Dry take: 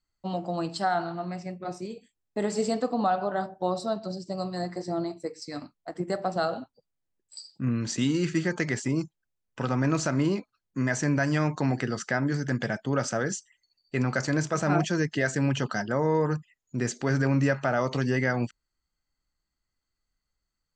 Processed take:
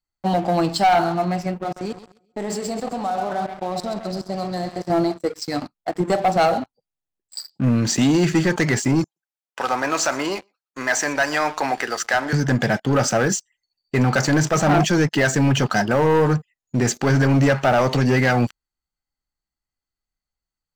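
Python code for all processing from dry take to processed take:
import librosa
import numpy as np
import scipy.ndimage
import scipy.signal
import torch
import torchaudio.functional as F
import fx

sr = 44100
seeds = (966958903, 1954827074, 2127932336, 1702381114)

y = fx.chain(x, sr, fx.level_steps(step_db=19),
    fx.echo_feedback(ms=132, feedback_pct=53, wet_db=-10.5), at=(1.63, 4.9))
y = fx.chain(y, sr, fx.highpass(hz=610.0, slope=12),
    fx.echo_single(ms=121, db=-21.0), at=(9.04, 12.33))
y = fx.peak_eq(y, sr, hz=790.0, db=6.5, octaves=0.27)
y = fx.leveller(y, sr, passes=3)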